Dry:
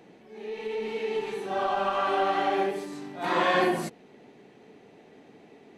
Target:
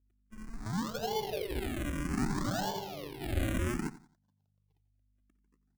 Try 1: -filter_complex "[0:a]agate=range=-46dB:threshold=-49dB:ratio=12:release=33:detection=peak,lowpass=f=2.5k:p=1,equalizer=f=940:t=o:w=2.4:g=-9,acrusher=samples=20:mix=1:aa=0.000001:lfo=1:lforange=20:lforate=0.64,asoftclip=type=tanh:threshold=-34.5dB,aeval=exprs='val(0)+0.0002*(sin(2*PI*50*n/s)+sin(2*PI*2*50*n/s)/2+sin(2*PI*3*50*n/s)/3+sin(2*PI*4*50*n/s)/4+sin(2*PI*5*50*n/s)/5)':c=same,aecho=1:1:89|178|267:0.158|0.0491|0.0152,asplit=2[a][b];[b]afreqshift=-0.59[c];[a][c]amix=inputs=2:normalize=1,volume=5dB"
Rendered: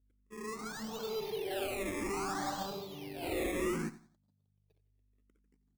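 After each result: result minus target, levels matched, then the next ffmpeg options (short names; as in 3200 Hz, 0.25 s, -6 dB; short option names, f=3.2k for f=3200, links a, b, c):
decimation with a swept rate: distortion -22 dB; soft clip: distortion +8 dB
-filter_complex "[0:a]agate=range=-46dB:threshold=-49dB:ratio=12:release=33:detection=peak,lowpass=f=2.5k:p=1,equalizer=f=940:t=o:w=2.4:g=-9,acrusher=samples=68:mix=1:aa=0.000001:lfo=1:lforange=68:lforate=0.64,asoftclip=type=tanh:threshold=-34.5dB,aeval=exprs='val(0)+0.0002*(sin(2*PI*50*n/s)+sin(2*PI*2*50*n/s)/2+sin(2*PI*3*50*n/s)/3+sin(2*PI*4*50*n/s)/4+sin(2*PI*5*50*n/s)/5)':c=same,aecho=1:1:89|178|267:0.158|0.0491|0.0152,asplit=2[a][b];[b]afreqshift=-0.59[c];[a][c]amix=inputs=2:normalize=1,volume=5dB"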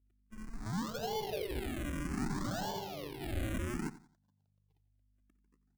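soft clip: distortion +8 dB
-filter_complex "[0:a]agate=range=-46dB:threshold=-49dB:ratio=12:release=33:detection=peak,lowpass=f=2.5k:p=1,equalizer=f=940:t=o:w=2.4:g=-9,acrusher=samples=68:mix=1:aa=0.000001:lfo=1:lforange=68:lforate=0.64,asoftclip=type=tanh:threshold=-26dB,aeval=exprs='val(0)+0.0002*(sin(2*PI*50*n/s)+sin(2*PI*2*50*n/s)/2+sin(2*PI*3*50*n/s)/3+sin(2*PI*4*50*n/s)/4+sin(2*PI*5*50*n/s)/5)':c=same,aecho=1:1:89|178|267:0.158|0.0491|0.0152,asplit=2[a][b];[b]afreqshift=-0.59[c];[a][c]amix=inputs=2:normalize=1,volume=5dB"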